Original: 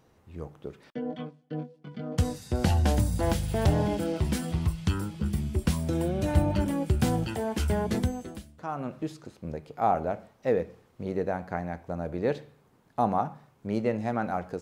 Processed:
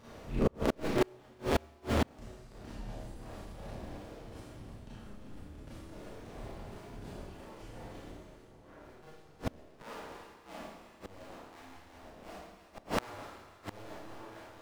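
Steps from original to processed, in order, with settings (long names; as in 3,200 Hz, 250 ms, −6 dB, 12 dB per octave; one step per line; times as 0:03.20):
sub-harmonics by changed cycles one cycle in 2, inverted
high-shelf EQ 8,700 Hz −7.5 dB
echo with a time of its own for lows and highs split 1,000 Hz, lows 742 ms, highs 316 ms, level −13 dB
four-comb reverb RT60 1.2 s, combs from 27 ms, DRR −9.5 dB
gate with flip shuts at −20 dBFS, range −34 dB
level +4.5 dB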